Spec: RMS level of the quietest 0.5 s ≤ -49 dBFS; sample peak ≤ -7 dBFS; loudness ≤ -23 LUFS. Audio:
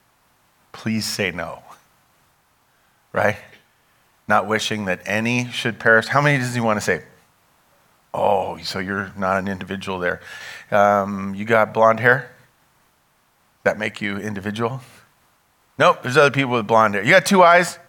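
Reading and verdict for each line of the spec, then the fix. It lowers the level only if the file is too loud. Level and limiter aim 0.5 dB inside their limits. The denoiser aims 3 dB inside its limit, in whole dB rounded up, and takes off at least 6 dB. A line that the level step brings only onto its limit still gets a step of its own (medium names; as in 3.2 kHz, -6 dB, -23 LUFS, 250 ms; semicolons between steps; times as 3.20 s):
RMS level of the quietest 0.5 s -62 dBFS: pass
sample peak -2.0 dBFS: fail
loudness -19.0 LUFS: fail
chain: trim -4.5 dB; peak limiter -7.5 dBFS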